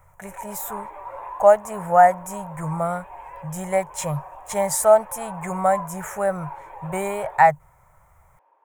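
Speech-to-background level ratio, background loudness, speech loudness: 16.5 dB, −38.0 LKFS, −21.5 LKFS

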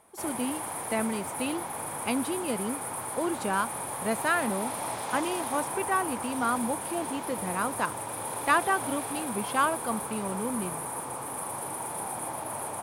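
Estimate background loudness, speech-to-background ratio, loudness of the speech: −34.0 LKFS, 2.5 dB, −31.5 LKFS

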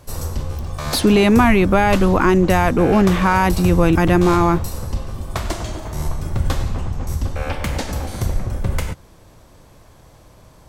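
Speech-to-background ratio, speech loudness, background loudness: 10.0 dB, −15.5 LKFS, −25.5 LKFS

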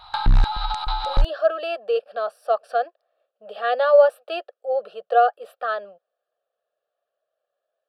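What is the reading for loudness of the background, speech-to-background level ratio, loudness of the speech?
−24.5 LKFS, 2.0 dB, −22.5 LKFS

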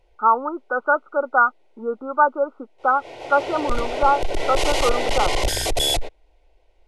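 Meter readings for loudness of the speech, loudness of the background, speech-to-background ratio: −22.0 LKFS, −24.0 LKFS, 2.0 dB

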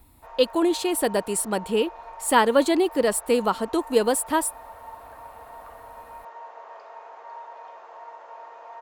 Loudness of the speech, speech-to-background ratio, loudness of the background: −23.0 LKFS, 19.5 dB, −42.5 LKFS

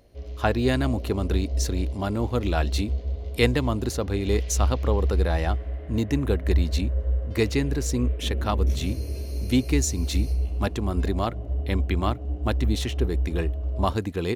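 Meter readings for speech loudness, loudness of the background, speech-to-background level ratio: −28.0 LKFS, −29.0 LKFS, 1.0 dB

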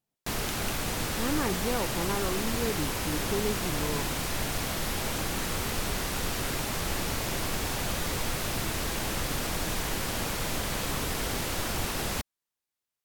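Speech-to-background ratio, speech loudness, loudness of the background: −3.5 dB, −34.0 LKFS, −30.5 LKFS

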